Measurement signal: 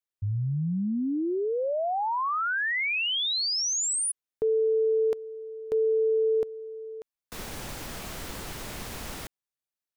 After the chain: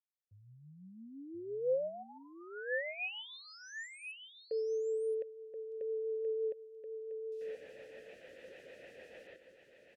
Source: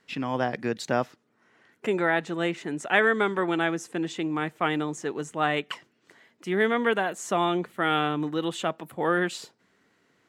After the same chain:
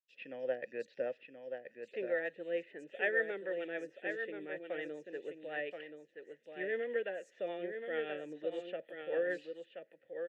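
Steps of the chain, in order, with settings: on a send: echo 1.028 s -7 dB; on the sum: rotary speaker horn 6.7 Hz; vowel filter e; bands offset in time highs, lows 90 ms, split 4200 Hz

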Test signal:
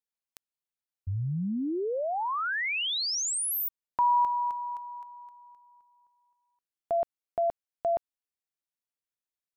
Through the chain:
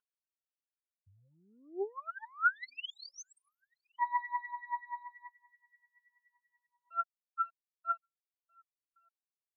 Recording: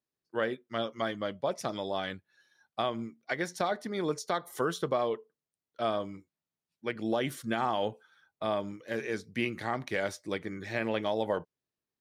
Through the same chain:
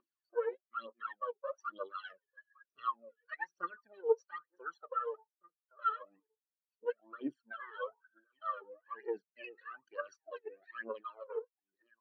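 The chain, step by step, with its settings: minimum comb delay 0.67 ms; reverse; compressor 5:1, threshold -45 dBFS; reverse; LPF 6000 Hz; on a send: echo 1.115 s -20.5 dB; on the sum: phaser 1.1 Hz, delay 2.4 ms, feedback 70%; HPF 420 Hz 12 dB/oct; upward compressor 4:1, threshold -48 dBFS; spectral expander 2.5:1; gain +10.5 dB

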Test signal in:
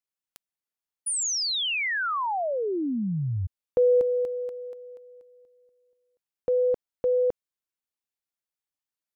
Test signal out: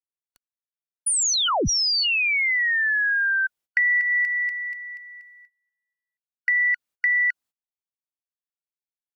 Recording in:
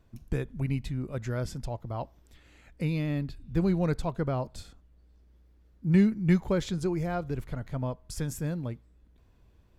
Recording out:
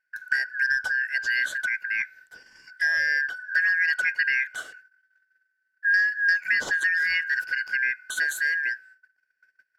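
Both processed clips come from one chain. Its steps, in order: four-band scrambler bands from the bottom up 3142; compressor 6:1, threshold -26 dBFS; gate -56 dBFS, range -24 dB; gain +7 dB

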